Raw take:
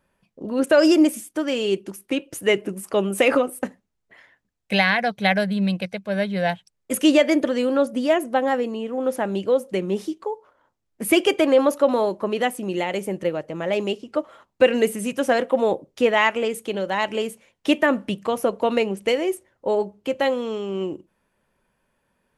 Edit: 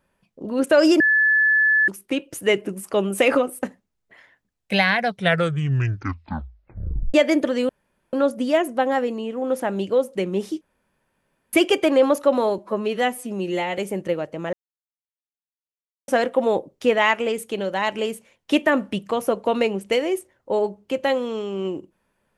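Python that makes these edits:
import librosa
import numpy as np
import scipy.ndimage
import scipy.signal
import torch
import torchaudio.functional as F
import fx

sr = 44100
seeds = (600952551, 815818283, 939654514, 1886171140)

y = fx.edit(x, sr, fx.bleep(start_s=1.0, length_s=0.88, hz=1730.0, db=-14.0),
    fx.tape_stop(start_s=5.07, length_s=2.07),
    fx.insert_room_tone(at_s=7.69, length_s=0.44),
    fx.room_tone_fill(start_s=10.17, length_s=0.92),
    fx.stretch_span(start_s=12.14, length_s=0.8, factor=1.5),
    fx.silence(start_s=13.69, length_s=1.55), tone=tone)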